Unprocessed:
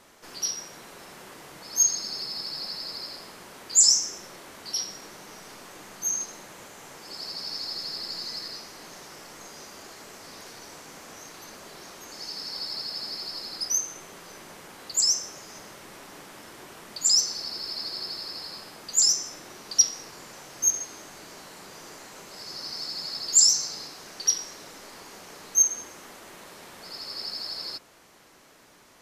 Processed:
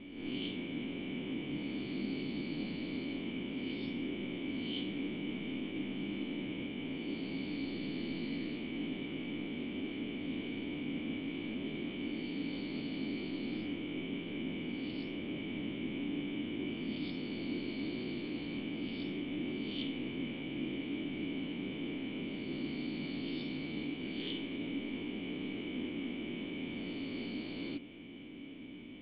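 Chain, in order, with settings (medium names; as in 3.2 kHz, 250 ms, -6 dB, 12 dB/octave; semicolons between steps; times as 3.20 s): reverse spectral sustain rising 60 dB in 0.73 s; cascade formant filter i; attacks held to a fixed rise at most 100 dB/s; trim +17.5 dB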